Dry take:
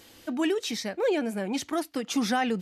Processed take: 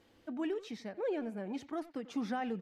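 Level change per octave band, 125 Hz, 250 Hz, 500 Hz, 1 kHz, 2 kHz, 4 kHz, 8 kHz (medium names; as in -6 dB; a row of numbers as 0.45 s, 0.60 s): no reading, -9.0 dB, -9.5 dB, -10.5 dB, -13.5 dB, -18.5 dB, under -20 dB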